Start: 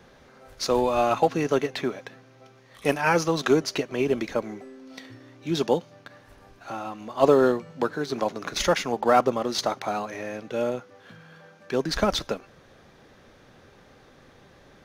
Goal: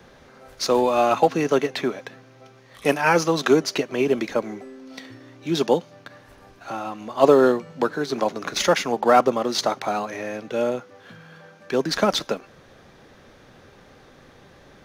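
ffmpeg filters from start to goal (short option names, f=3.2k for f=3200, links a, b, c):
-filter_complex "[0:a]acrossover=split=130|1400|7400[a][b][c][d];[a]acompressor=threshold=-56dB:ratio=6[e];[d]volume=33.5dB,asoftclip=hard,volume=-33.5dB[f];[e][b][c][f]amix=inputs=4:normalize=0,volume=3.5dB"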